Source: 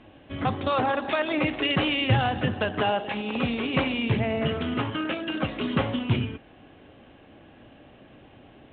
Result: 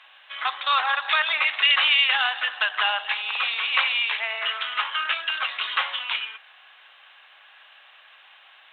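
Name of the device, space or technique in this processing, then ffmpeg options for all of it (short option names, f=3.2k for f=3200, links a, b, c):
headphones lying on a table: -af "highpass=f=1.1k:w=0.5412,highpass=f=1.1k:w=1.3066,equalizer=f=3.7k:t=o:w=0.26:g=5,volume=8.5dB"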